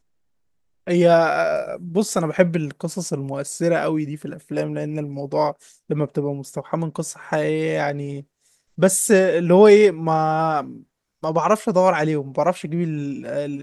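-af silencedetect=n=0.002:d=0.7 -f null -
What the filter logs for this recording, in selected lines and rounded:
silence_start: 0.00
silence_end: 0.87 | silence_duration: 0.87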